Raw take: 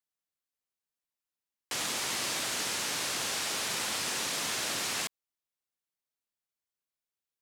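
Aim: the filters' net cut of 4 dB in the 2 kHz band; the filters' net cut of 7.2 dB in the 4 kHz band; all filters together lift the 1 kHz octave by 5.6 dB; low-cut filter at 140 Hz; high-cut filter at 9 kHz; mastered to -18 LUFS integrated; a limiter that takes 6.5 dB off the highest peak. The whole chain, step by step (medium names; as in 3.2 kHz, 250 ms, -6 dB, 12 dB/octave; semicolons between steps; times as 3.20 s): high-pass 140 Hz; low-pass 9 kHz; peaking EQ 1 kHz +9 dB; peaking EQ 2 kHz -6 dB; peaking EQ 4 kHz -8 dB; trim +18.5 dB; peak limiter -9 dBFS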